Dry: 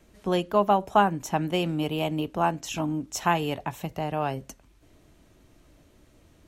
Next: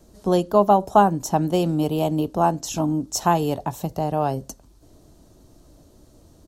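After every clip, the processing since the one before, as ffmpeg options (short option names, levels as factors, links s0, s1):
-af "firequalizer=gain_entry='entry(750,0);entry(2200,-15);entry(4400,1)':delay=0.05:min_phase=1,volume=2"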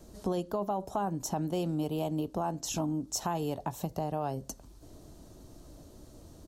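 -af "alimiter=limit=0.251:level=0:latency=1:release=11,acompressor=threshold=0.02:ratio=2.5"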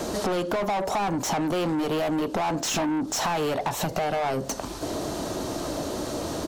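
-filter_complex "[0:a]asplit=2[s0][s1];[s1]highpass=f=720:p=1,volume=31.6,asoftclip=type=tanh:threshold=0.112[s2];[s0][s2]amix=inputs=2:normalize=0,lowpass=f=2800:p=1,volume=0.501,acompressor=threshold=0.02:ratio=4,volume=2.66"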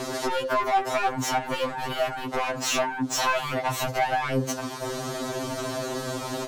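-filter_complex "[0:a]acrossover=split=400|690|2200[s0][s1][s2][s3];[s2]crystalizer=i=8:c=0[s4];[s0][s1][s4][s3]amix=inputs=4:normalize=0,afftfilt=real='re*2.45*eq(mod(b,6),0)':imag='im*2.45*eq(mod(b,6),0)':win_size=2048:overlap=0.75,volume=1.26"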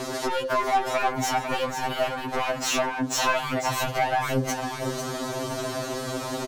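-af "aecho=1:1:498:0.398"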